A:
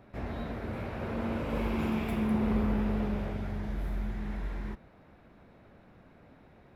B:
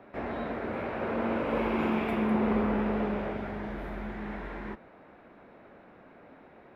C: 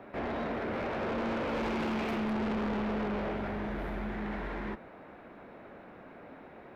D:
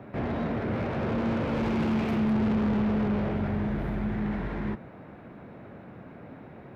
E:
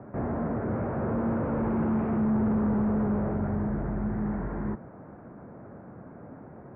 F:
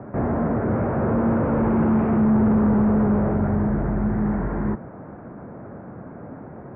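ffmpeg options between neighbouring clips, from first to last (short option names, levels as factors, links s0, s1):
-filter_complex "[0:a]acrossover=split=230 3100:gain=0.178 1 0.178[s0][s1][s2];[s0][s1][s2]amix=inputs=3:normalize=0,volume=2.11"
-af "asoftclip=type=tanh:threshold=0.0211,volume=1.5"
-af "equalizer=f=120:t=o:w=1.8:g=15"
-af "lowpass=f=1500:w=0.5412,lowpass=f=1500:w=1.3066"
-af "aresample=8000,aresample=44100,volume=2.37"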